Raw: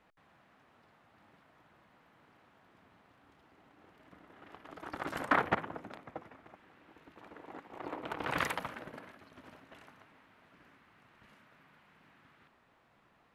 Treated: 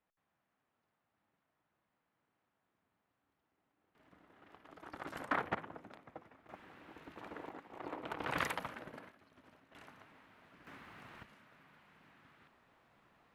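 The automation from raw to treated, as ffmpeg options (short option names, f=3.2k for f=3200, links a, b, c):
-af "asetnsamples=n=441:p=0,asendcmd='3.95 volume volume -7dB;6.49 volume volume 4dB;7.49 volume volume -3dB;9.09 volume volume -9dB;9.75 volume volume 0dB;10.67 volume volume 9dB;11.23 volume volume -1dB',volume=-19dB"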